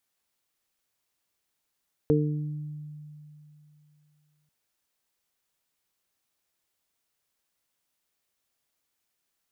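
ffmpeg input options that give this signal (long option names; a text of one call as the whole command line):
ffmpeg -f lavfi -i "aevalsrc='0.075*pow(10,-3*t/2.97)*sin(2*PI*150*t)+0.0841*pow(10,-3*t/1.01)*sin(2*PI*300*t)+0.119*pow(10,-3*t/0.5)*sin(2*PI*450*t)':duration=2.39:sample_rate=44100" out.wav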